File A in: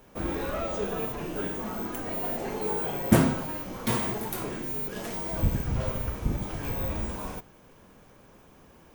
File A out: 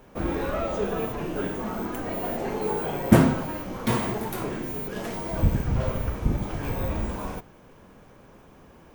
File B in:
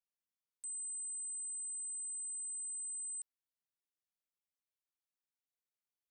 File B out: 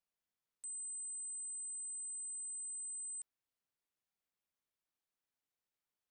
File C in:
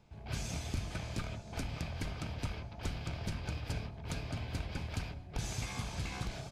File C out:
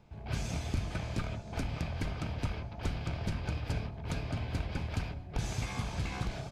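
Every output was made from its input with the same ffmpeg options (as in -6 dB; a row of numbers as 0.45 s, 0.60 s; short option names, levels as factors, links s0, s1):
-af "highshelf=f=3500:g=-7,volume=1.58"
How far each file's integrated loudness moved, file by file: +2.5 LU, -2.0 LU, +3.5 LU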